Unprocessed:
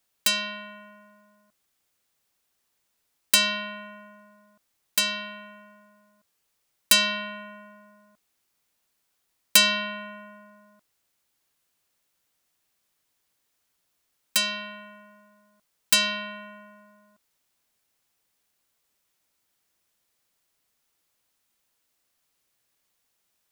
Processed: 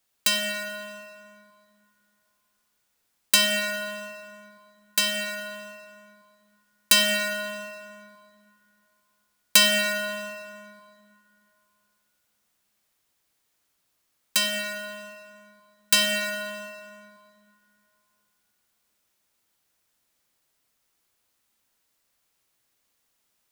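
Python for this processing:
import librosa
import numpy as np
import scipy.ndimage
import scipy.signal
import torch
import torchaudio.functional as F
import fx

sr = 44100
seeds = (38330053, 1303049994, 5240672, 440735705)

y = fx.rev_plate(x, sr, seeds[0], rt60_s=2.7, hf_ratio=0.6, predelay_ms=0, drr_db=3.0)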